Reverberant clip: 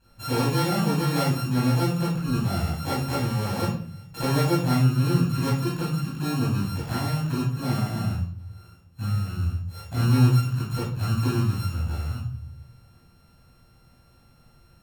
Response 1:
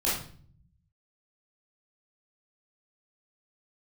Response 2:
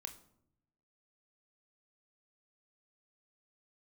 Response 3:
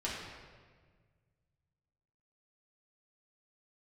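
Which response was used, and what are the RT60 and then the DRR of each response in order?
1; 0.50 s, 0.75 s, 1.6 s; -8.5 dB, 6.0 dB, -7.5 dB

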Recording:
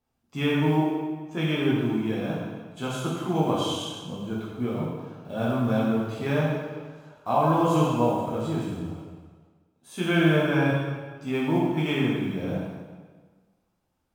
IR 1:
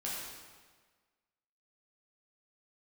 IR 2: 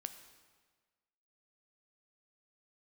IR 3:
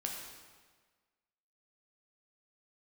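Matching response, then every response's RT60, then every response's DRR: 1; 1.5 s, 1.5 s, 1.5 s; -7.0 dB, 8.5 dB, -0.5 dB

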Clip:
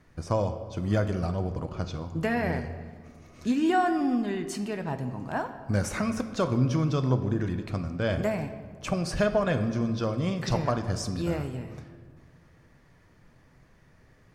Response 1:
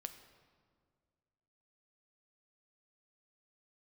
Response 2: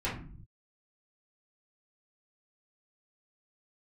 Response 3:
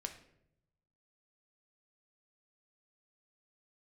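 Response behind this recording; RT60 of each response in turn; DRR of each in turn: 1; 1.9 s, no single decay rate, 0.75 s; 8.0 dB, -9.5 dB, 5.0 dB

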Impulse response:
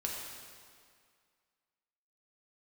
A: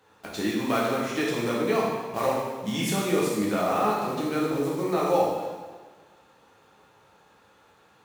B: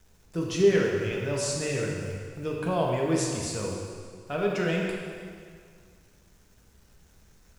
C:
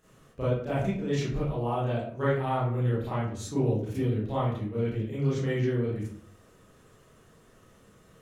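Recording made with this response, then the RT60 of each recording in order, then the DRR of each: B; 1.4 s, 2.1 s, 0.60 s; -5.5 dB, -2.5 dB, -10.0 dB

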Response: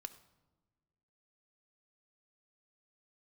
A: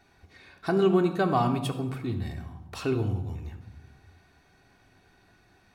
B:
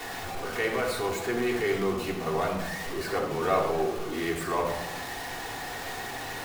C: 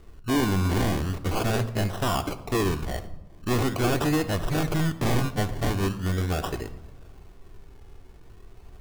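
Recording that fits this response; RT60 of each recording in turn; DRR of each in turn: C; no single decay rate, 1.1 s, no single decay rate; 3.0 dB, -6.0 dB, 8.5 dB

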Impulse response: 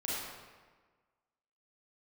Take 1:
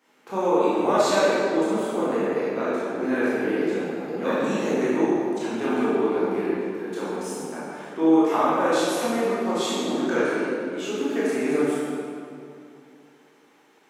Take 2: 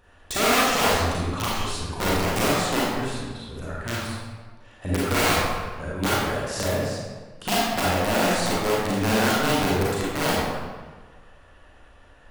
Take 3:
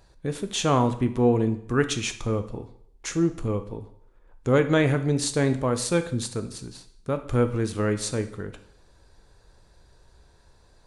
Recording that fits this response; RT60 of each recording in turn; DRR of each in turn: 2; 2.5 s, 1.4 s, 0.70 s; -10.0 dB, -7.5 dB, 8.5 dB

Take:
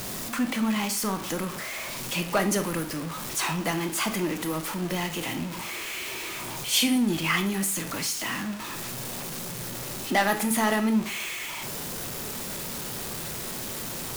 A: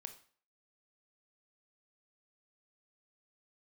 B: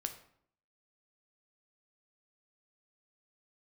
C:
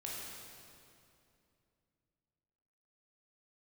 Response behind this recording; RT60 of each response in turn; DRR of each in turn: A; 0.45 s, 0.65 s, 2.6 s; 7.0 dB, 6.5 dB, -5.0 dB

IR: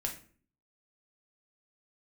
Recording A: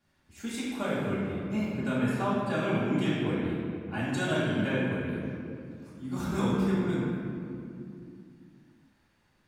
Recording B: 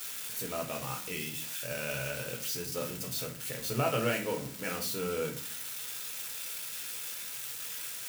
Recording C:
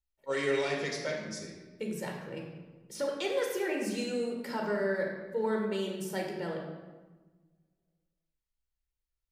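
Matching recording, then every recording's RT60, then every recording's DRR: B; 2.5 s, 0.45 s, 1.3 s; -11.0 dB, 1.5 dB, -0.5 dB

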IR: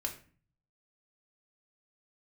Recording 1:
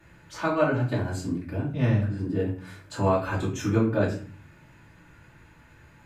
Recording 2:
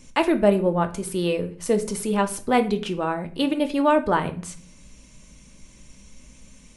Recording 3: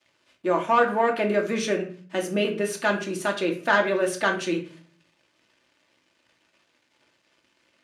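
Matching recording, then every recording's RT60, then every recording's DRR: 3; 0.40 s, 0.40 s, 0.40 s; -8.0 dB, 6.5 dB, 1.0 dB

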